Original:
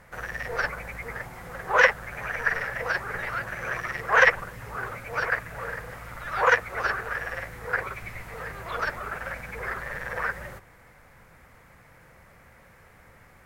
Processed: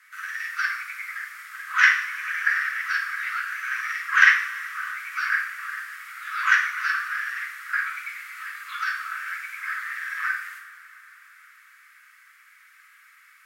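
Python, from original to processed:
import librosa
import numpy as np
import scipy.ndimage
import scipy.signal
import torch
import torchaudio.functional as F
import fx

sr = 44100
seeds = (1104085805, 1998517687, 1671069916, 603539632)

y = scipy.signal.sosfilt(scipy.signal.butter(12, 1200.0, 'highpass', fs=sr, output='sos'), x)
y = fx.rev_double_slope(y, sr, seeds[0], early_s=0.6, late_s=4.9, knee_db=-20, drr_db=-2.0)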